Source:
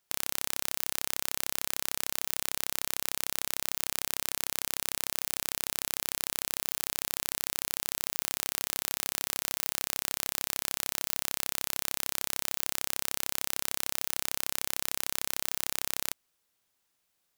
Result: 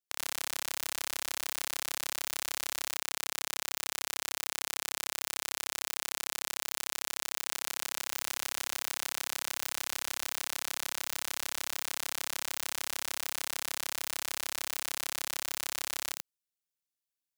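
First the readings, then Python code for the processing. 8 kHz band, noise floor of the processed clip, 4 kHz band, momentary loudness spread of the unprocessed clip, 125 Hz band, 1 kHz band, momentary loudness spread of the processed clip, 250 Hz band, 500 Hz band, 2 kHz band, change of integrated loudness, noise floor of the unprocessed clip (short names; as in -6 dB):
-2.5 dB, under -85 dBFS, -1.0 dB, 0 LU, -11.0 dB, 0.0 dB, 0 LU, -6.0 dB, -2.5 dB, +0.5 dB, -3.5 dB, -77 dBFS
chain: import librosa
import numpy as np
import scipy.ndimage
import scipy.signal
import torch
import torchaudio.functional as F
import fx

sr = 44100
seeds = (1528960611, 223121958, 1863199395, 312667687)

y = fx.peak_eq(x, sr, hz=860.0, db=-11.0, octaves=2.7)
y = y + 10.0 ** (-7.5 / 20.0) * np.pad(y, (int(84 * sr / 1000.0), 0))[:len(y)]
y = fx.leveller(y, sr, passes=5)
y = np.clip(10.0 ** (11.0 / 20.0) * y, -1.0, 1.0) / 10.0 ** (11.0 / 20.0)
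y = fx.low_shelf(y, sr, hz=110.0, db=-8.0)
y = F.gain(torch.from_numpy(y), -4.5).numpy()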